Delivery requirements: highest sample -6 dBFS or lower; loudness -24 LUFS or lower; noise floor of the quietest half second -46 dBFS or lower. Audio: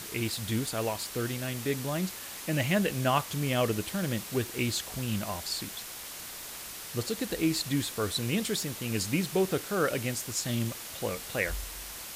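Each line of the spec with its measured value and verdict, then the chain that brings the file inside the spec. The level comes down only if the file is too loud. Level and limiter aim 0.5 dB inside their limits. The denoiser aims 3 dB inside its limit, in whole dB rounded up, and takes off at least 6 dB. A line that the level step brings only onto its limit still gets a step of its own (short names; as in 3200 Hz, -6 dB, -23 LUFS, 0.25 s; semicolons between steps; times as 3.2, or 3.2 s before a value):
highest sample -14.0 dBFS: OK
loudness -31.0 LUFS: OK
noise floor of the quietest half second -42 dBFS: fail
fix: denoiser 7 dB, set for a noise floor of -42 dBFS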